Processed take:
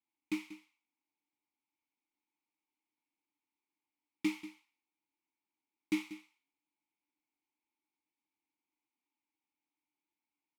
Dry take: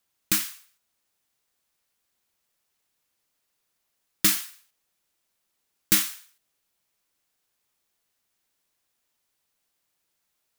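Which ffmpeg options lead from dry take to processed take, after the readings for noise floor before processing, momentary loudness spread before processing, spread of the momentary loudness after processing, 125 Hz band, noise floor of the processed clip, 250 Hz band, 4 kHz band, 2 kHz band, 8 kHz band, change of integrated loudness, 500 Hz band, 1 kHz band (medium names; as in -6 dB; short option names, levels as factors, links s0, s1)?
-77 dBFS, 12 LU, 15 LU, -15.0 dB, under -85 dBFS, -1.5 dB, -21.0 dB, -12.0 dB, -30.0 dB, -16.0 dB, -3.0 dB, -14.5 dB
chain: -filter_complex "[0:a]asplit=3[s0][s1][s2];[s0]bandpass=f=300:t=q:w=8,volume=1[s3];[s1]bandpass=f=870:t=q:w=8,volume=0.501[s4];[s2]bandpass=f=2240:t=q:w=8,volume=0.355[s5];[s3][s4][s5]amix=inputs=3:normalize=0,aecho=1:1:188:0.188,volume=1.33"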